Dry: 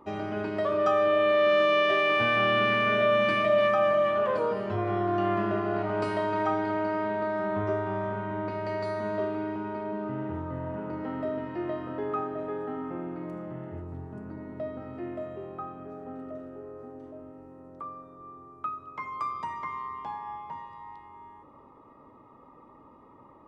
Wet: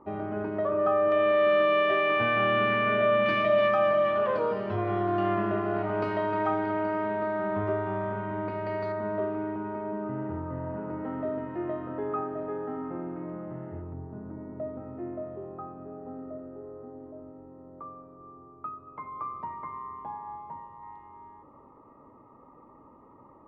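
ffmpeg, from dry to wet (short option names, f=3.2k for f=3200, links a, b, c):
-af "asetnsamples=n=441:p=0,asendcmd='1.12 lowpass f 2500;3.26 lowpass f 4300;5.35 lowpass f 3000;8.92 lowpass f 1800;13.93 lowpass f 1100;20.83 lowpass f 1600',lowpass=1.4k"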